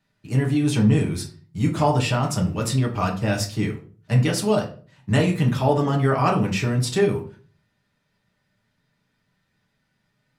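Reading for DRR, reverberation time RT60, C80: -1.0 dB, 0.40 s, 15.5 dB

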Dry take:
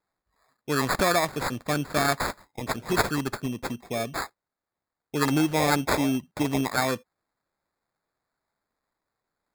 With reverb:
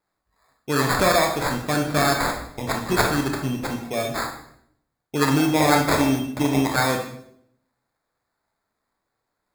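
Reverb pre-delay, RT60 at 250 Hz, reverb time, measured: 20 ms, 0.85 s, 0.70 s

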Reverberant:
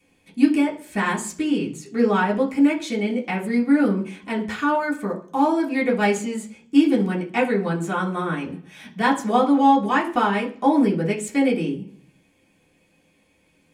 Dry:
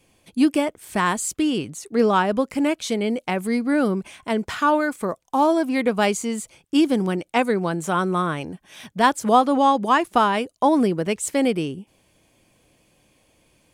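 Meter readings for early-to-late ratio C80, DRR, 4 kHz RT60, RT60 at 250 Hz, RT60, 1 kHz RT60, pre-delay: 17.0 dB, -4.5 dB, 0.55 s, 0.75 s, 0.50 s, 0.40 s, 3 ms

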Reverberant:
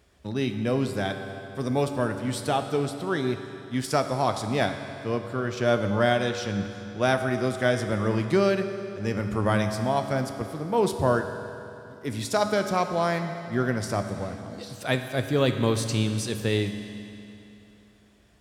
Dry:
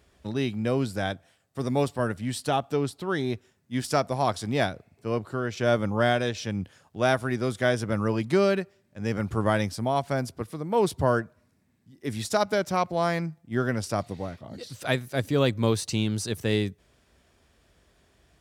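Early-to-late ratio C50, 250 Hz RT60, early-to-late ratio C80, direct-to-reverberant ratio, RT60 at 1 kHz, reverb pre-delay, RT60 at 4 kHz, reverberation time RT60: 7.5 dB, 3.0 s, 8.0 dB, 6.5 dB, 3.0 s, 10 ms, 2.7 s, 3.0 s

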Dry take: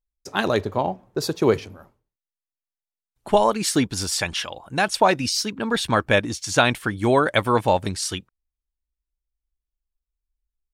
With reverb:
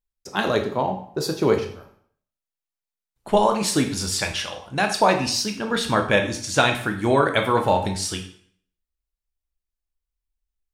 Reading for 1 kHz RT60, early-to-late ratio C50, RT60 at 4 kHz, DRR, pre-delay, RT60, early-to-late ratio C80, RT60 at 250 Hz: 0.55 s, 8.5 dB, 0.50 s, 4.0 dB, 7 ms, 0.55 s, 12.5 dB, 0.55 s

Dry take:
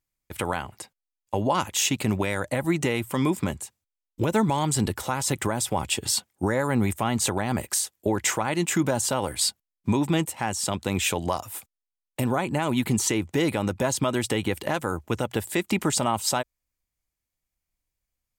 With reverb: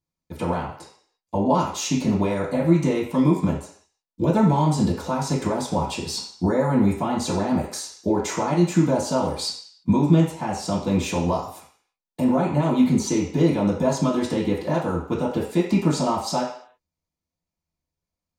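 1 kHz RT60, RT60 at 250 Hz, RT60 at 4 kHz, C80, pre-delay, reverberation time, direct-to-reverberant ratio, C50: 0.55 s, 0.50 s, 0.60 s, 9.0 dB, 3 ms, 0.55 s, -11.0 dB, 5.5 dB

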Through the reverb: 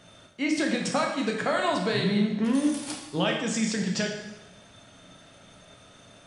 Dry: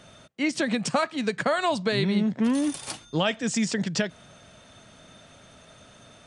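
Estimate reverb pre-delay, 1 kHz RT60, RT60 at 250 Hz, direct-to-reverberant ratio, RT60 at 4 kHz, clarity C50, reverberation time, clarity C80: 10 ms, 1.0 s, 1.0 s, 0.5 dB, 0.95 s, 4.5 dB, 1.0 s, 6.5 dB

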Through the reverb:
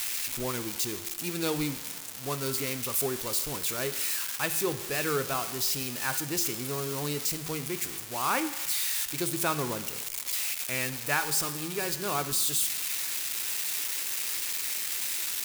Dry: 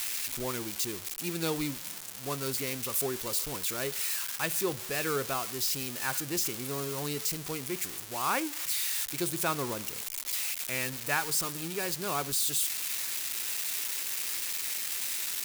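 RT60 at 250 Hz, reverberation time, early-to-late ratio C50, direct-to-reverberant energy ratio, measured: 1.2 s, 1.2 s, 12.5 dB, 10.5 dB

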